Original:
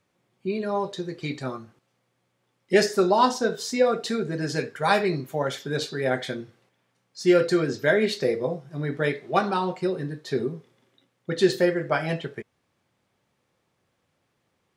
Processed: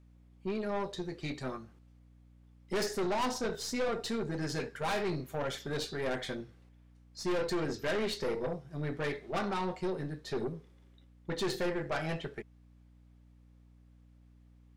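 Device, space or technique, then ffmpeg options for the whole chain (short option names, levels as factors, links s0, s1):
valve amplifier with mains hum: -af "aeval=exprs='(tanh(17.8*val(0)+0.45)-tanh(0.45))/17.8':c=same,aeval=exprs='val(0)+0.002*(sin(2*PI*60*n/s)+sin(2*PI*2*60*n/s)/2+sin(2*PI*3*60*n/s)/3+sin(2*PI*4*60*n/s)/4+sin(2*PI*5*60*n/s)/5)':c=same,volume=0.631"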